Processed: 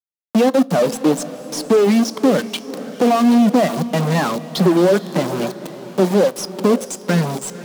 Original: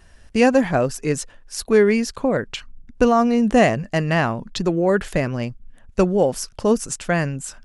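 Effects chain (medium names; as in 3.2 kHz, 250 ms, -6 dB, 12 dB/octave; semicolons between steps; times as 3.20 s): expander on every frequency bin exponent 2; compression 12:1, threshold -30 dBFS, peak gain reduction 18 dB; added noise pink -55 dBFS; small samples zeroed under -40.5 dBFS; reverb removal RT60 0.53 s; fuzz box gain 42 dB, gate -51 dBFS; steep high-pass 170 Hz 48 dB/octave; de-esser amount 30%; low-pass 2.7 kHz 6 dB/octave; peaking EQ 1.9 kHz -9 dB 1.6 oct; echo that smears into a reverb 515 ms, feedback 44%, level -14.5 dB; on a send at -18 dB: reverberation RT60 0.45 s, pre-delay 4 ms; on the sum: trim +4 dB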